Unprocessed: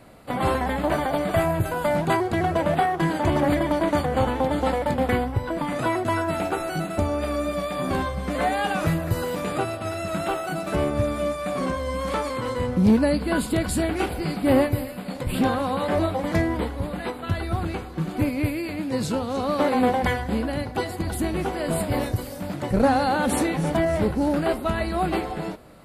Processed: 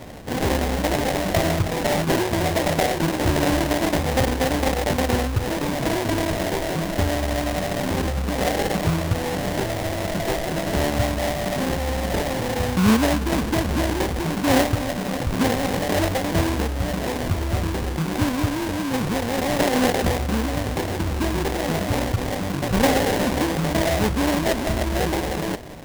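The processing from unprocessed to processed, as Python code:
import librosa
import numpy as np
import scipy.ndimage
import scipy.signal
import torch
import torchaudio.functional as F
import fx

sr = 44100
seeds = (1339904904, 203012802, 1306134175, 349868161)

p1 = fx.peak_eq(x, sr, hz=67.0, db=4.5, octaves=0.77)
p2 = fx.over_compress(p1, sr, threshold_db=-35.0, ratio=-1.0)
p3 = p1 + (p2 * librosa.db_to_amplitude(-3.0))
y = fx.sample_hold(p3, sr, seeds[0], rate_hz=1300.0, jitter_pct=20)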